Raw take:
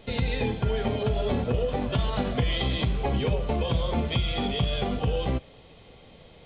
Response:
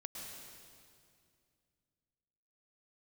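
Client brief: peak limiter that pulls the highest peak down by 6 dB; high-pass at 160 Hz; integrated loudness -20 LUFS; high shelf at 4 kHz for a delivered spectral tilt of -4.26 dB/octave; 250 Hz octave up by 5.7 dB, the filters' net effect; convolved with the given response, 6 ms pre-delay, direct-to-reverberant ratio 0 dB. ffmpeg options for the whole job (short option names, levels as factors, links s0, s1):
-filter_complex "[0:a]highpass=160,equalizer=f=250:t=o:g=8,highshelf=f=4000:g=8,alimiter=limit=0.141:level=0:latency=1,asplit=2[s0][s1];[1:a]atrim=start_sample=2205,adelay=6[s2];[s1][s2]afir=irnorm=-1:irlink=0,volume=1.33[s3];[s0][s3]amix=inputs=2:normalize=0,volume=1.68"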